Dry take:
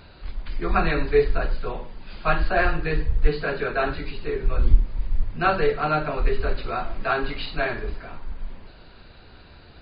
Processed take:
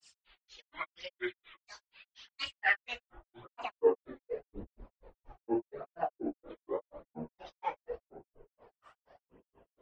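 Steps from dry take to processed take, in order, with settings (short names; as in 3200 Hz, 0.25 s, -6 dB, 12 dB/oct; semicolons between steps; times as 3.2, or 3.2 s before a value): phaser 0.85 Hz, delay 3.5 ms, feedback 45%; band-pass sweep 2900 Hz -> 610 Hz, 2.01–3.79; grains 0.149 s, grains 4.2/s, pitch spread up and down by 12 st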